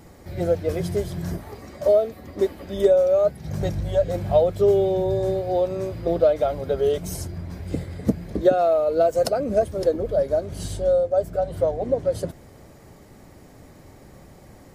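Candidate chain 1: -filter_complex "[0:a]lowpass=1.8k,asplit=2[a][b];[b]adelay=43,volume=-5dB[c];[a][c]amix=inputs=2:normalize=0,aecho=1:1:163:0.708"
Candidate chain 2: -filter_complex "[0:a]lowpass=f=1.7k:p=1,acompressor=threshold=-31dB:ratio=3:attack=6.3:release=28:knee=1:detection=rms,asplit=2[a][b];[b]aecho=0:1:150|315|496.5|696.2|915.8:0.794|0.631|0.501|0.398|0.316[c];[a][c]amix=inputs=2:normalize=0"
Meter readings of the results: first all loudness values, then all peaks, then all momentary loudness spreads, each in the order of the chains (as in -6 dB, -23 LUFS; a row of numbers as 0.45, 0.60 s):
-20.0, -28.0 LUFS; -4.5, -15.0 dBFS; 12, 14 LU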